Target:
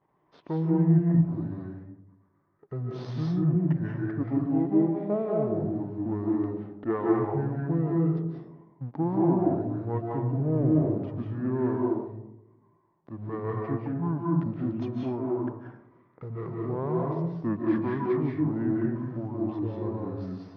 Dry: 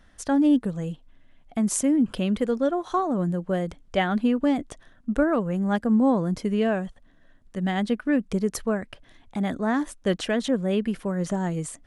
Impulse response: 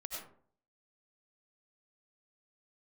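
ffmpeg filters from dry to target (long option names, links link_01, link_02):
-filter_complex "[0:a]aeval=exprs='if(lt(val(0),0),0.447*val(0),val(0))':channel_layout=same,equalizer=frequency=1500:width_type=o:width=2.6:gain=-2.5,asplit=2[link_01][link_02];[link_02]aeval=exprs='val(0)*gte(abs(val(0)),0.0133)':channel_layout=same,volume=-9dB[link_03];[link_01][link_03]amix=inputs=2:normalize=0,highpass=310,lowpass=2100[link_04];[1:a]atrim=start_sample=2205,asetrate=40131,aresample=44100[link_05];[link_04][link_05]afir=irnorm=-1:irlink=0,asetrate=25442,aresample=44100,volume=1.5dB"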